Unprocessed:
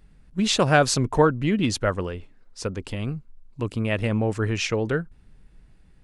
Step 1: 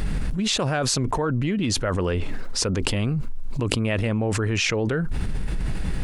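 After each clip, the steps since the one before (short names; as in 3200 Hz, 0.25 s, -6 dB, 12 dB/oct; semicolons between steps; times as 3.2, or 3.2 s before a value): fast leveller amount 100%; gain -9.5 dB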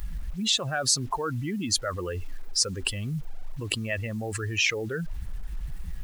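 per-bin expansion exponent 2; tilt shelf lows -4.5 dB, about 1100 Hz; bit-crush 9-bit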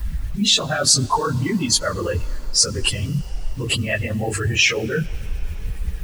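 phase scrambler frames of 50 ms; on a send at -21 dB: reverb RT60 5.6 s, pre-delay 64 ms; on the sum: gain +8.5 dB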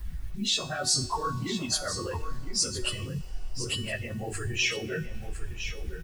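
resonator 370 Hz, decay 0.47 s, mix 80%; echo 1.009 s -10.5 dB; gain +1.5 dB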